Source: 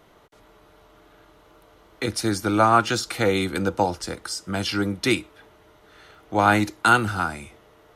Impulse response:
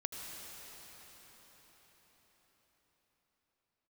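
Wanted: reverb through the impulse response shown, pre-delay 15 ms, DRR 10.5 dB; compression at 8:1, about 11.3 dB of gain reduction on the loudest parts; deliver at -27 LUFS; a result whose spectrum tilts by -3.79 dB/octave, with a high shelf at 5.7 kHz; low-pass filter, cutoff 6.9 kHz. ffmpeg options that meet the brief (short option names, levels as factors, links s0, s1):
-filter_complex "[0:a]lowpass=6900,highshelf=f=5700:g=7.5,acompressor=threshold=0.0708:ratio=8,asplit=2[s0][s1];[1:a]atrim=start_sample=2205,adelay=15[s2];[s1][s2]afir=irnorm=-1:irlink=0,volume=0.282[s3];[s0][s3]amix=inputs=2:normalize=0,volume=1.19"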